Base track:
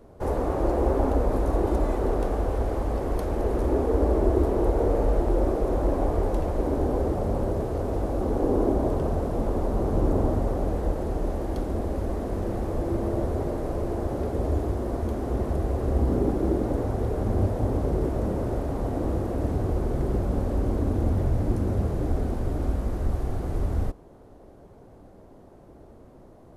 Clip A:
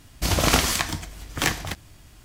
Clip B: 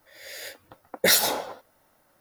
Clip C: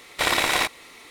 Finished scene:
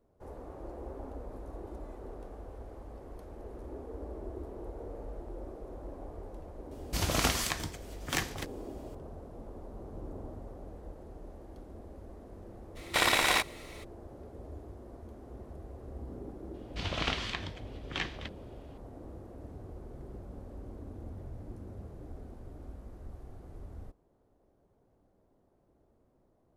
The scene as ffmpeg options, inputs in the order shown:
ffmpeg -i bed.wav -i cue0.wav -i cue1.wav -i cue2.wav -filter_complex "[1:a]asplit=2[link_01][link_02];[0:a]volume=-20dB[link_03];[link_02]lowpass=frequency=3300:width_type=q:width=1.9[link_04];[link_01]atrim=end=2.24,asetpts=PTS-STARTPTS,volume=-9dB,afade=type=in:duration=0.004:curve=hsin,afade=type=out:start_time=2.236:duration=0.004:curve=hsin,adelay=6710[link_05];[3:a]atrim=end=1.1,asetpts=PTS-STARTPTS,volume=-4.5dB,afade=type=in:duration=0.02,afade=type=out:start_time=1.08:duration=0.02,adelay=12750[link_06];[link_04]atrim=end=2.24,asetpts=PTS-STARTPTS,volume=-14dB,afade=type=in:duration=0.004:curve=hsin,afade=type=out:start_time=2.236:duration=0.004:curve=hsin,adelay=16540[link_07];[link_03][link_05][link_06][link_07]amix=inputs=4:normalize=0" out.wav

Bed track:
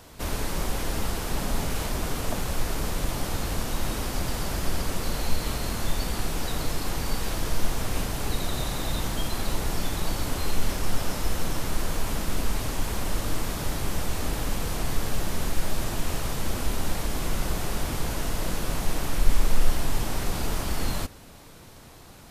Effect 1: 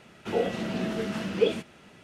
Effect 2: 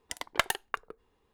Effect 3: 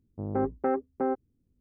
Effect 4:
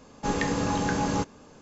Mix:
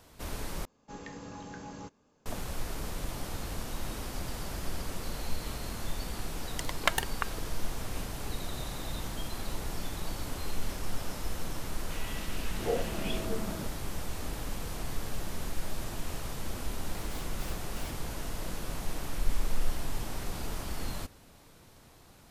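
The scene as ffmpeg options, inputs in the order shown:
ffmpeg -i bed.wav -i cue0.wav -i cue1.wav -i cue2.wav -i cue3.wav -filter_complex "[0:a]volume=-8.5dB[link_01];[2:a]bandreject=frequency=319.7:width_type=h:width=4,bandreject=frequency=639.4:width_type=h:width=4,bandreject=frequency=959.1:width_type=h:width=4,bandreject=frequency=1278.8:width_type=h:width=4,bandreject=frequency=1598.5:width_type=h:width=4,bandreject=frequency=1918.2:width_type=h:width=4,bandreject=frequency=2237.9:width_type=h:width=4,bandreject=frequency=2557.6:width_type=h:width=4,bandreject=frequency=2877.3:width_type=h:width=4,bandreject=frequency=3197:width_type=h:width=4,bandreject=frequency=3516.7:width_type=h:width=4,bandreject=frequency=3836.4:width_type=h:width=4,bandreject=frequency=4156.1:width_type=h:width=4,bandreject=frequency=4475.8:width_type=h:width=4,bandreject=frequency=4795.5:width_type=h:width=4,bandreject=frequency=5115.2:width_type=h:width=4,bandreject=frequency=5434.9:width_type=h:width=4,bandreject=frequency=5754.6:width_type=h:width=4,bandreject=frequency=6074.3:width_type=h:width=4,bandreject=frequency=6394:width_type=h:width=4,bandreject=frequency=6713.7:width_type=h:width=4,bandreject=frequency=7033.4:width_type=h:width=4,bandreject=frequency=7353.1:width_type=h:width=4,bandreject=frequency=7672.8:width_type=h:width=4,bandreject=frequency=7992.5:width_type=h:width=4,bandreject=frequency=8312.2:width_type=h:width=4,bandreject=frequency=8631.9:width_type=h:width=4,bandreject=frequency=8951.6:width_type=h:width=4,bandreject=frequency=9271.3:width_type=h:width=4,bandreject=frequency=9591:width_type=h:width=4,bandreject=frequency=9910.7:width_type=h:width=4,bandreject=frequency=10230.4:width_type=h:width=4,bandreject=frequency=10550.1:width_type=h:width=4,bandreject=frequency=10869.8:width_type=h:width=4,bandreject=frequency=11189.5:width_type=h:width=4,bandreject=frequency=11509.2:width_type=h:width=4,bandreject=frequency=11828.9:width_type=h:width=4,bandreject=frequency=12148.6:width_type=h:width=4,bandreject=frequency=12468.3:width_type=h:width=4[link_02];[1:a]acrossover=split=220|1400[link_03][link_04][link_05];[link_03]adelay=580[link_06];[link_04]adelay=690[link_07];[link_06][link_07][link_05]amix=inputs=3:normalize=0[link_08];[3:a]aeval=exprs='(mod(37.6*val(0)+1,2)-1)/37.6':channel_layout=same[link_09];[link_01]asplit=2[link_10][link_11];[link_10]atrim=end=0.654[link_12];[4:a]atrim=end=1.61,asetpts=PTS-STARTPTS,volume=-17.5dB[link_13];[link_11]atrim=start=2.256[link_14];[link_02]atrim=end=1.33,asetpts=PTS-STARTPTS,volume=-0.5dB,afade=type=in:duration=0.004:curve=hsin,afade=type=out:start_time=1.326:duration=0.004:curve=hsin,adelay=6480[link_15];[link_08]atrim=end=2.03,asetpts=PTS-STARTPTS,volume=-4dB,afade=type=in:duration=0.004:curve=hsin,afade=type=out:start_time=2.026:duration=0.004:curve=hsin,adelay=11640[link_16];[link_09]atrim=end=1.6,asetpts=PTS-STARTPTS,volume=-11.5dB,afade=type=in:duration=0.004:curve=hsin,afade=type=out:start_time=1.596:duration=0.004:curve=hsin,adelay=16760[link_17];[link_12][link_13]acrossfade=duration=0.004:curve1=hsin:curve2=hsin[link_18];[link_18][link_14]acrossfade=duration=0.004:curve1=hsin:curve2=hsin[link_19];[link_19][link_15][link_16][link_17]amix=inputs=4:normalize=0" out.wav

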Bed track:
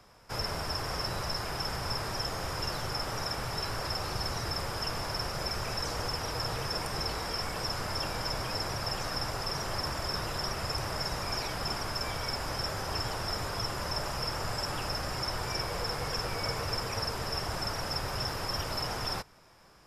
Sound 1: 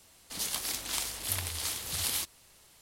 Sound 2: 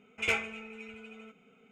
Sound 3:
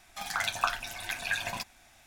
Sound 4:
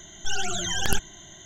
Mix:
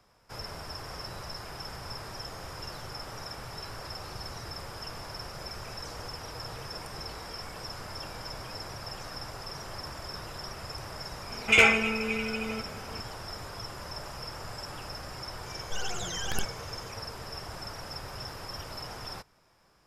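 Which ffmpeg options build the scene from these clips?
ffmpeg -i bed.wav -i cue0.wav -i cue1.wav -i cue2.wav -i cue3.wav -filter_complex "[0:a]volume=-6.5dB[link_01];[2:a]alimiter=level_in=23.5dB:limit=-1dB:release=50:level=0:latency=1,atrim=end=1.71,asetpts=PTS-STARTPTS,volume=-8.5dB,afade=type=in:duration=0.004:curve=hsin,afade=type=out:start_time=1.706:duration=0.004:curve=hsin,adelay=498330S[link_02];[4:a]atrim=end=1.45,asetpts=PTS-STARTPTS,volume=-8dB,afade=type=in:duration=0.004:curve=hsin,afade=type=out:start_time=1.446:duration=0.004:curve=hsin,adelay=15460[link_03];[link_01][link_02][link_03]amix=inputs=3:normalize=0" out.wav

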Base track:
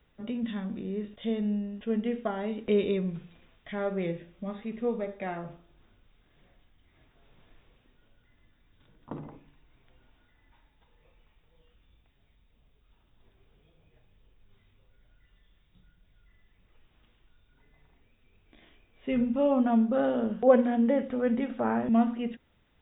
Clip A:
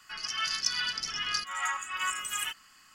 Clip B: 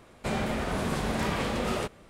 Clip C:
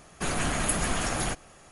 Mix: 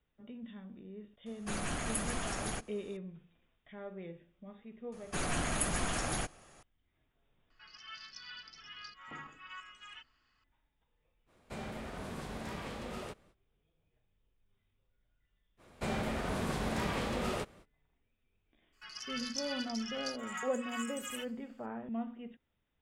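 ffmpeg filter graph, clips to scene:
ffmpeg -i bed.wav -i cue0.wav -i cue1.wav -i cue2.wav -filter_complex "[3:a]asplit=2[link_01][link_02];[1:a]asplit=2[link_03][link_04];[2:a]asplit=2[link_05][link_06];[0:a]volume=-14.5dB[link_07];[link_03]lowpass=frequency=4700:width=0.5412,lowpass=frequency=4700:width=1.3066[link_08];[link_04]agate=range=-33dB:threshold=-53dB:ratio=3:release=100:detection=peak[link_09];[link_01]atrim=end=1.71,asetpts=PTS-STARTPTS,volume=-9dB,afade=type=in:duration=0.004:curve=hsin,afade=type=out:start_time=1.706:duration=0.004:curve=hsin,adelay=1260[link_10];[link_02]atrim=end=1.71,asetpts=PTS-STARTPTS,volume=-6dB,afade=type=in:duration=0.004:curve=hsin,afade=type=out:start_time=1.706:duration=0.004:curve=hsin,adelay=4920[link_11];[link_08]atrim=end=2.94,asetpts=PTS-STARTPTS,volume=-16dB,afade=type=in:duration=0.004:curve=hsin,afade=type=out:start_time=2.936:duration=0.004:curve=hsin,adelay=7500[link_12];[link_05]atrim=end=2.09,asetpts=PTS-STARTPTS,volume=-13dB,afade=type=in:duration=0.05,afade=type=out:start_time=2.04:duration=0.05,adelay=11260[link_13];[link_06]atrim=end=2.09,asetpts=PTS-STARTPTS,volume=-5.5dB,afade=type=in:duration=0.05,afade=type=out:start_time=2.04:duration=0.05,adelay=15570[link_14];[link_09]atrim=end=2.94,asetpts=PTS-STARTPTS,volume=-10dB,afade=type=in:duration=0.004:curve=hsin,afade=type=out:start_time=2.936:duration=0.004:curve=hsin,adelay=18720[link_15];[link_07][link_10][link_11][link_12][link_13][link_14][link_15]amix=inputs=7:normalize=0" out.wav

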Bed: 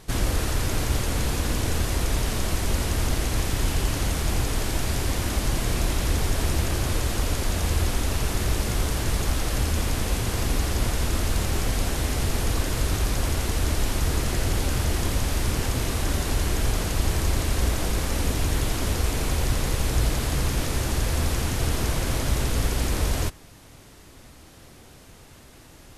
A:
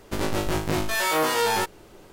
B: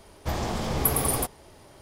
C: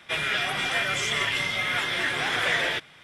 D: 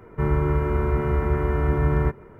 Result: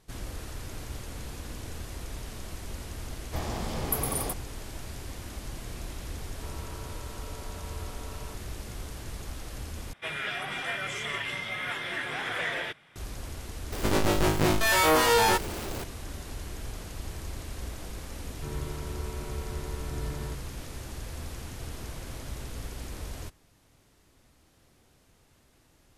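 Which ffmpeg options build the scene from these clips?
ffmpeg -i bed.wav -i cue0.wav -i cue1.wav -i cue2.wav -i cue3.wav -filter_complex "[4:a]asplit=2[link_01][link_02];[0:a]volume=-14.5dB[link_03];[link_01]asuperpass=centerf=800:order=20:qfactor=0.83[link_04];[3:a]equalizer=frequency=5100:width_type=o:width=1.6:gain=-6[link_05];[1:a]aeval=exprs='val(0)+0.5*0.0237*sgn(val(0))':channel_layout=same[link_06];[link_03]asplit=2[link_07][link_08];[link_07]atrim=end=9.934[link_09];[link_05]atrim=end=3.03,asetpts=PTS-STARTPTS,volume=-5.5dB[link_10];[link_08]atrim=start=12.956[link_11];[2:a]atrim=end=1.81,asetpts=PTS-STARTPTS,volume=-5.5dB,afade=type=in:duration=0.004:curve=hsin,afade=type=out:start_time=1.806:duration=0.004:curve=hsin,adelay=3070[link_12];[link_04]atrim=end=2.39,asetpts=PTS-STARTPTS,volume=-16.5dB,afade=type=in:duration=0.004:curve=hsin,afade=type=out:start_time=2.386:duration=0.004:curve=hsin,adelay=6240[link_13];[link_06]atrim=end=2.12,asetpts=PTS-STARTPTS,afade=type=in:duration=0.004:curve=hsin,afade=type=out:start_time=2.116:duration=0.004:curve=hsin,adelay=13720[link_14];[link_02]atrim=end=2.39,asetpts=PTS-STARTPTS,volume=-16.5dB,afade=type=in:duration=0.004:curve=hsin,afade=type=out:start_time=2.386:duration=0.004:curve=hsin,adelay=18240[link_15];[link_09][link_10]acrossfade=duration=0.004:curve1=hsin:curve2=hsin[link_16];[link_16][link_11]acrossfade=duration=0.004:curve1=hsin:curve2=hsin[link_17];[link_17][link_12][link_13][link_14][link_15]amix=inputs=5:normalize=0" out.wav

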